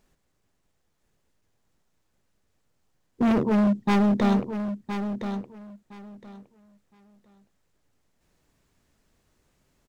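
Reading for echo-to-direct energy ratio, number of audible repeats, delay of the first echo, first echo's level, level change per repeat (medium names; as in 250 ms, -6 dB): -9.0 dB, 2, 1015 ms, -9.0 dB, -14.5 dB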